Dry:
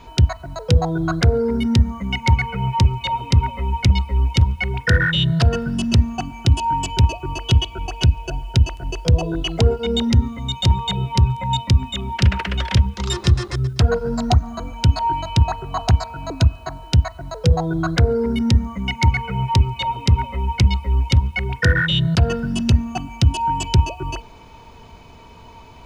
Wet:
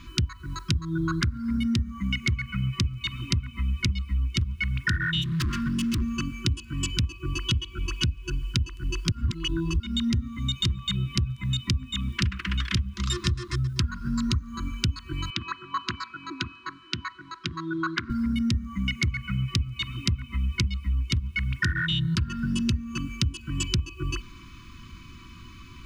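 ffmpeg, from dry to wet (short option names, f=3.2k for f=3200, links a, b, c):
-filter_complex "[0:a]asplit=3[a][b][c];[a]afade=t=out:st=5.21:d=0.02[d];[b]asoftclip=type=hard:threshold=-22dB,afade=t=in:st=5.21:d=0.02,afade=t=out:st=6.01:d=0.02[e];[c]afade=t=in:st=6.01:d=0.02[f];[d][e][f]amix=inputs=3:normalize=0,asettb=1/sr,asplit=3[g][h][i];[g]atrim=end=15.304[j];[h]atrim=start=15.3:end=18.1,asetpts=PTS-STARTPTS,afade=t=in:d=0.004:c=qsin,afade=t=out:st=2.796:d=0.004:c=qsin,highpass=380,lowpass=3.7k[k];[i]atrim=start=18.096[l];[j][k]acrossfade=d=0.004:c1=hsin:c2=qsin[m];[m][l]acrossfade=d=0.004:c1=qsin:c2=hsin,asplit=3[n][o][p];[n]atrim=end=9.122[q];[o]atrim=start=9.118:end=9.802,asetpts=PTS-STARTPTS,areverse[r];[p]atrim=start=9.798[s];[q][r]acrossfade=d=0.004:c1=hsin:c2=hsin[t];[t][s]acrossfade=d=0.004:c1=hsin:c2=hsin,afftfilt=real='re*(1-between(b*sr/4096,370,980))':imag='im*(1-between(b*sr/4096,370,980))':win_size=4096:overlap=0.75,acompressor=threshold=-23dB:ratio=6"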